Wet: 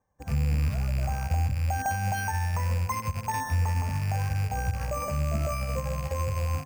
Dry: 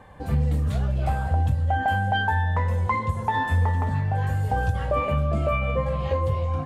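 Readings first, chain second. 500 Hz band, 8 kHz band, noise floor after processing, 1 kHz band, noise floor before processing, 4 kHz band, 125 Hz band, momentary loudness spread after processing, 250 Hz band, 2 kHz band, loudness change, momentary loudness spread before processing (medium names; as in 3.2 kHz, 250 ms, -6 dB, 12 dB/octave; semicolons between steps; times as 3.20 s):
-8.0 dB, no reading, -40 dBFS, -6.5 dB, -31 dBFS, -4.5 dB, -3.5 dB, 4 LU, -5.5 dB, -7.0 dB, -4.5 dB, 3 LU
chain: rattle on loud lows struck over -30 dBFS, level -22 dBFS; Bessel low-pass 1.8 kHz, order 2; dynamic bell 370 Hz, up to -8 dB, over -45 dBFS, Q 1.5; peak limiter -21.5 dBFS, peak gain reduction 8 dB; sample-and-hold 6×; upward expansion 2.5:1, over -47 dBFS; trim +4 dB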